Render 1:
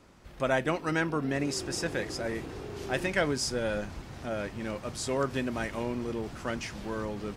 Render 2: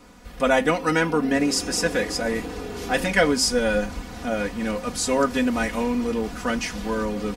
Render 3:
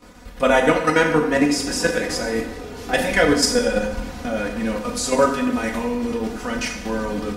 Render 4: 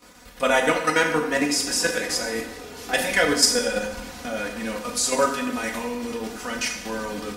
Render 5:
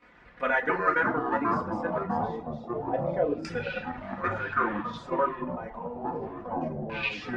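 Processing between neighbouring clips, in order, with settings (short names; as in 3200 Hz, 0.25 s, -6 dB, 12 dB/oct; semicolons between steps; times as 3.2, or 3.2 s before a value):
high shelf 8600 Hz +5 dB; comb 4.1 ms, depth 92%; de-hum 266.4 Hz, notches 38; gain +6 dB
level quantiser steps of 10 dB; plate-style reverb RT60 0.97 s, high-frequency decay 0.8×, DRR 2 dB; gain +4 dB
tilt +2 dB/oct; gain -3 dB
reverb removal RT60 1.4 s; echoes that change speed 90 ms, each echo -6 st, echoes 3; LFO low-pass saw down 0.29 Hz 570–2100 Hz; gain -8.5 dB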